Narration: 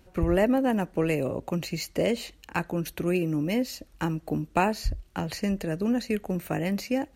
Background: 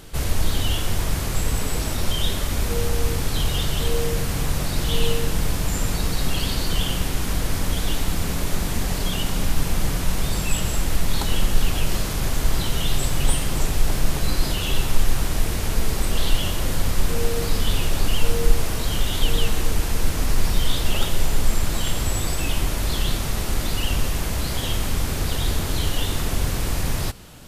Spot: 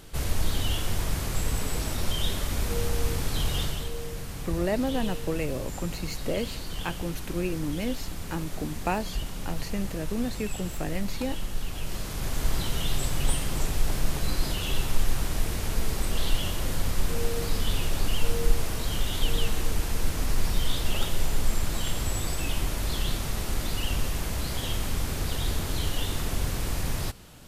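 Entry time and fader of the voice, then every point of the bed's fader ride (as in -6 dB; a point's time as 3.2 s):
4.30 s, -4.5 dB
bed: 3.63 s -5 dB
3.91 s -12.5 dB
11.68 s -12.5 dB
12.45 s -5.5 dB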